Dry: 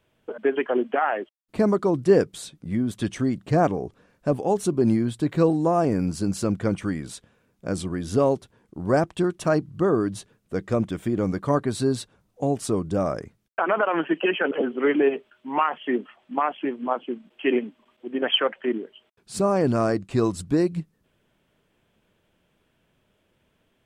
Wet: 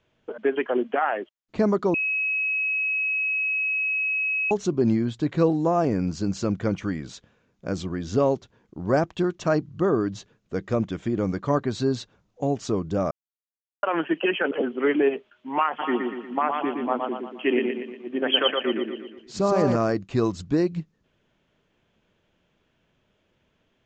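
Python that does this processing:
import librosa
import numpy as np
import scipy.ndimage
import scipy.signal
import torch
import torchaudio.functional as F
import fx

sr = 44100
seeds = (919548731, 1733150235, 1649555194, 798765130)

y = fx.echo_feedback(x, sr, ms=118, feedback_pct=49, wet_db=-4, at=(15.78, 19.75), fade=0.02)
y = fx.edit(y, sr, fx.bleep(start_s=1.94, length_s=2.57, hz=2560.0, db=-22.0),
    fx.silence(start_s=13.11, length_s=0.72), tone=tone)
y = scipy.signal.sosfilt(scipy.signal.ellip(4, 1.0, 40, 6900.0, 'lowpass', fs=sr, output='sos'), y)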